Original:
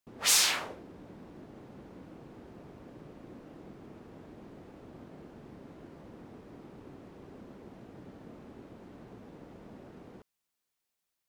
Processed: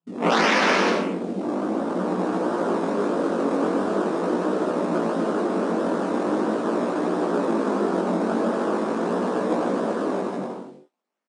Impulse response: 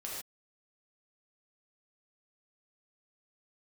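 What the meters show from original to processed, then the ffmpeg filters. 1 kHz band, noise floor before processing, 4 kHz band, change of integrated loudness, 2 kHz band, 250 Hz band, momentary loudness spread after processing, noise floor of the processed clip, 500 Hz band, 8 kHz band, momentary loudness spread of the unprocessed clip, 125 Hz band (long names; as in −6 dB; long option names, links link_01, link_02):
+22.0 dB, −85 dBFS, +1.5 dB, +2.0 dB, +13.5 dB, +25.5 dB, 6 LU, −47 dBFS, +27.5 dB, −7.5 dB, 16 LU, +17.0 dB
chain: -filter_complex "[0:a]acrossover=split=550[link_01][link_02];[link_02]dynaudnorm=framelen=310:gausssize=9:maxgain=16dB[link_03];[link_01][link_03]amix=inputs=2:normalize=0,highshelf=frequency=2400:gain=-11.5,asplit=2[link_04][link_05];[1:a]atrim=start_sample=2205,asetrate=23373,aresample=44100[link_06];[link_05][link_06]afir=irnorm=-1:irlink=0,volume=0dB[link_07];[link_04][link_07]amix=inputs=2:normalize=0,acrusher=samples=20:mix=1:aa=0.000001:lfo=1:lforange=20:lforate=1.5,afftfilt=real='re*between(b*sr/4096,170,9900)':imag='im*between(b*sr/4096,170,9900)':win_size=4096:overlap=0.75,acontrast=39,afwtdn=0.02,aecho=1:1:150|247.5|310.9|352.1|378.8:0.631|0.398|0.251|0.158|0.1,adynamicequalizer=threshold=0.0112:dfrequency=810:dqfactor=1.5:tfrequency=810:tqfactor=1.5:attack=5:release=100:ratio=0.375:range=3:mode=cutabove:tftype=bell,flanger=delay=16:depth=5.6:speed=0.42,alimiter=level_in=19.5dB:limit=-1dB:release=50:level=0:latency=1,volume=-9dB"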